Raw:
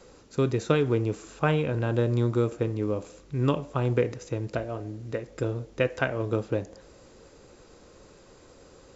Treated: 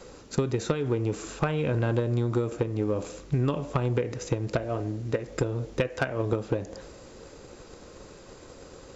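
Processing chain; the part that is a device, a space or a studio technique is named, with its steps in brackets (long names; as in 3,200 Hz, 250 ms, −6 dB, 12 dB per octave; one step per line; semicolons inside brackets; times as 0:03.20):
drum-bus smash (transient designer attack +8 dB, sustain +3 dB; downward compressor 10 to 1, threshold −25 dBFS, peak gain reduction 15.5 dB; soft clipping −19 dBFS, distortion −17 dB)
level +4.5 dB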